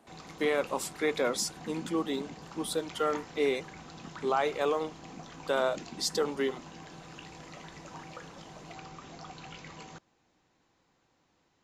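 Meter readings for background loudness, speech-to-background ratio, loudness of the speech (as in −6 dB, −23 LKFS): −47.0 LKFS, 15.0 dB, −32.0 LKFS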